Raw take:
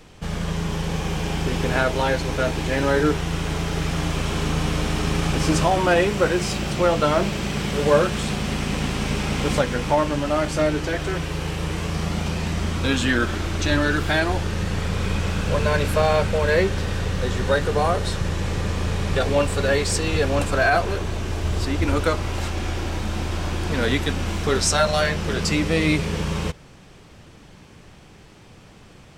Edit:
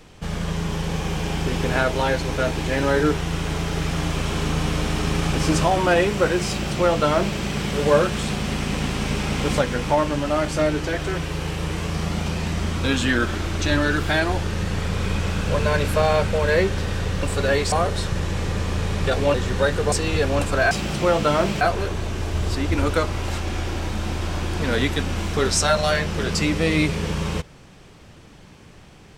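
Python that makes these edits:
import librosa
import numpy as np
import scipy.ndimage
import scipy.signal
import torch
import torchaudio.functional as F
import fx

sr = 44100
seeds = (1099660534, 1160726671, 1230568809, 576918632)

y = fx.edit(x, sr, fx.duplicate(start_s=6.48, length_s=0.9, to_s=20.71),
    fx.swap(start_s=17.23, length_s=0.58, other_s=19.43, other_length_s=0.49), tone=tone)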